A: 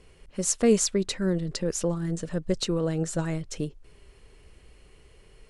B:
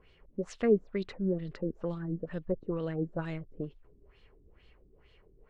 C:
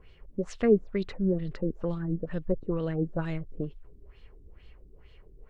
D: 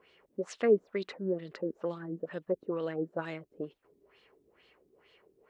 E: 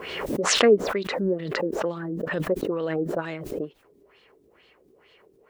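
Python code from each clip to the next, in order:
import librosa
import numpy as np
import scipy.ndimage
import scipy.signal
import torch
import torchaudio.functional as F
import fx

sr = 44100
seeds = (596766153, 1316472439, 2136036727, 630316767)

y1 = fx.filter_lfo_lowpass(x, sr, shape='sine', hz=2.2, low_hz=270.0, high_hz=3800.0, q=2.5)
y1 = y1 * 10.0 ** (-8.0 / 20.0)
y2 = fx.low_shelf(y1, sr, hz=97.0, db=9.0)
y2 = y2 * 10.0 ** (2.5 / 20.0)
y3 = scipy.signal.sosfilt(scipy.signal.butter(2, 350.0, 'highpass', fs=sr, output='sos'), y2)
y4 = fx.pre_swell(y3, sr, db_per_s=38.0)
y4 = y4 * 10.0 ** (6.0 / 20.0)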